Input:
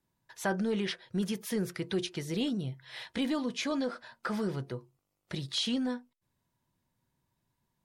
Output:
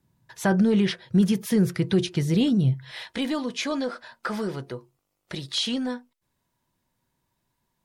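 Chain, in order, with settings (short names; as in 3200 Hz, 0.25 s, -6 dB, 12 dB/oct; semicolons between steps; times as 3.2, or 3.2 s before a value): bell 120 Hz +11 dB 2 oct, from 2.91 s -5 dB; gain +5.5 dB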